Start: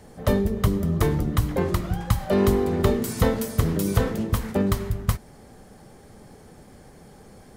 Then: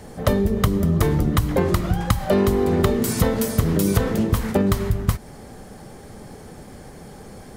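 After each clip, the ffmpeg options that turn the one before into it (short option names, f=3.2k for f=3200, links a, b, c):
-af "acompressor=threshold=-22dB:ratio=6,volume=7.5dB"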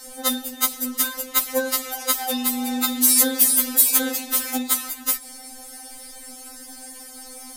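-af "crystalizer=i=8.5:c=0,afftfilt=real='re*3.46*eq(mod(b,12),0)':imag='im*3.46*eq(mod(b,12),0)':win_size=2048:overlap=0.75,volume=-5dB"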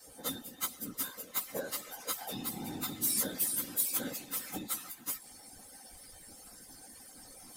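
-af "afftfilt=real='hypot(re,im)*cos(2*PI*random(0))':imag='hypot(re,im)*sin(2*PI*random(1))':win_size=512:overlap=0.75,areverse,acompressor=mode=upward:threshold=-38dB:ratio=2.5,areverse,volume=-9dB"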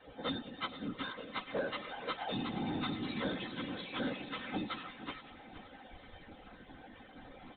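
-af "aresample=8000,asoftclip=type=tanh:threshold=-33.5dB,aresample=44100,aecho=1:1:472|944|1416|1888:0.2|0.0778|0.0303|0.0118,volume=5.5dB"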